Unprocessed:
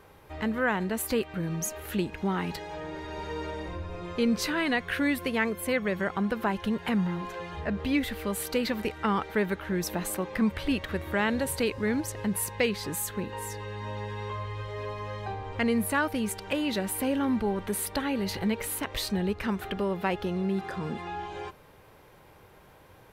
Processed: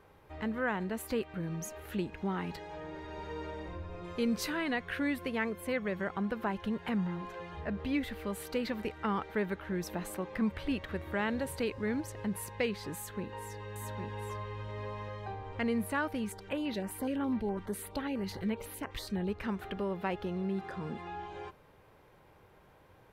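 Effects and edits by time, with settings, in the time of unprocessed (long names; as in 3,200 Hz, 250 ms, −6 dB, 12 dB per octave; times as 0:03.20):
0:04.04–0:04.57: high-shelf EQ 6,900 Hz +11 dB
0:12.95–0:15.09: single-tap delay 807 ms −5 dB
0:16.24–0:19.28: notch on a step sequencer 12 Hz 590–7,800 Hz
whole clip: high-shelf EQ 4,000 Hz −7 dB; level −5.5 dB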